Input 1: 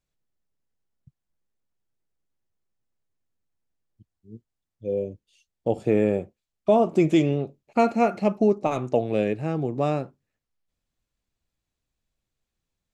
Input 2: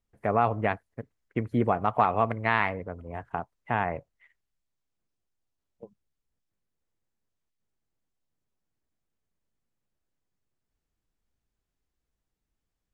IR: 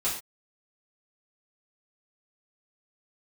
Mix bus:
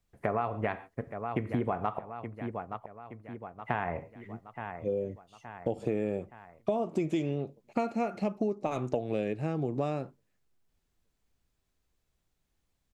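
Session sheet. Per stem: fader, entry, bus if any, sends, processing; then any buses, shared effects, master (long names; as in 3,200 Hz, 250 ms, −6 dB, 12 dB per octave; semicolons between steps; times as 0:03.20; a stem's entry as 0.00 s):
−0.5 dB, 0.00 s, no send, no echo send, no processing
+2.0 dB, 0.00 s, muted 0:01.99–0:03.64, send −17 dB, echo send −14.5 dB, no processing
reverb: on, pre-delay 3 ms
echo: repeating echo 871 ms, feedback 50%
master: downward compressor, threshold −27 dBFS, peak gain reduction 12.5 dB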